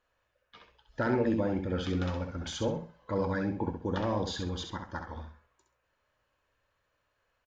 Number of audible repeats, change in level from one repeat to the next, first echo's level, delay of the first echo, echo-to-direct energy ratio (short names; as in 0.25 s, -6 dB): 3, -12.0 dB, -6.0 dB, 66 ms, -5.5 dB